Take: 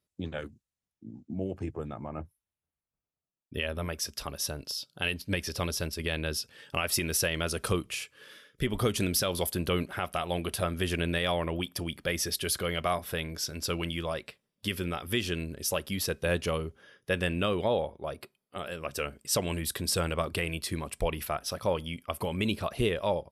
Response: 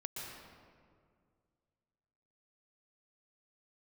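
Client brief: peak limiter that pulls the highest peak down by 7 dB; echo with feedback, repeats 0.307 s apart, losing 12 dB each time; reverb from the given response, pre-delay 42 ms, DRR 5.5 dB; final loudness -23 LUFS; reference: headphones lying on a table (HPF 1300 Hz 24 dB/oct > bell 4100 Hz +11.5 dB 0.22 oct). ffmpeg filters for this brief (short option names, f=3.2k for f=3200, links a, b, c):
-filter_complex "[0:a]alimiter=limit=-22dB:level=0:latency=1,aecho=1:1:307|614|921:0.251|0.0628|0.0157,asplit=2[a][b];[1:a]atrim=start_sample=2205,adelay=42[c];[b][c]afir=irnorm=-1:irlink=0,volume=-5dB[d];[a][d]amix=inputs=2:normalize=0,highpass=f=1.3k:w=0.5412,highpass=f=1.3k:w=1.3066,equalizer=f=4.1k:t=o:w=0.22:g=11.5,volume=12dB"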